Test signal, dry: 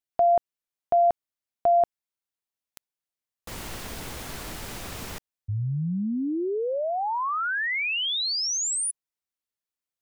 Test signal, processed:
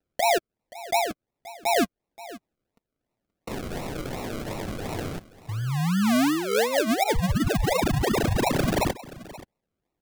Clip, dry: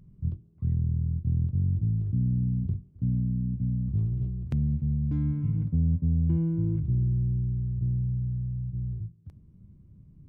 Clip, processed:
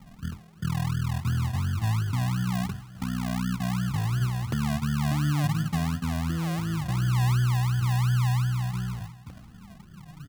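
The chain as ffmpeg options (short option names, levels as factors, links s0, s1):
-filter_complex "[0:a]acrossover=split=120[s0][s1];[s1]acontrast=89[s2];[s0][s2]amix=inputs=2:normalize=0,alimiter=limit=0.126:level=0:latency=1:release=327,asplit=2[s3][s4];[s4]acompressor=threshold=0.0141:ratio=6:attack=1.1:release=28:detection=rms,volume=0.841[s5];[s3][s5]amix=inputs=2:normalize=0,flanger=delay=3.9:depth=5.1:regen=20:speed=0.32:shape=sinusoidal,acrusher=samples=39:mix=1:aa=0.000001:lfo=1:lforange=23.4:lforate=2.8,aecho=1:1:527:0.126"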